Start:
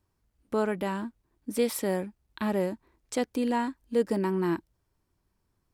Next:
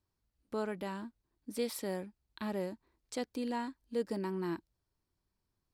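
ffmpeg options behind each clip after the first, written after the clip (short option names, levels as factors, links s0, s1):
-af "equalizer=f=4400:t=o:w=0.59:g=6,volume=0.355"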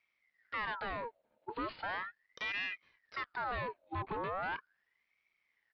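-af "asoftclip=type=tanh:threshold=0.0112,aresample=8000,aresample=44100,aeval=exprs='val(0)*sin(2*PI*1400*n/s+1400*0.6/0.38*sin(2*PI*0.38*n/s))':c=same,volume=2.37"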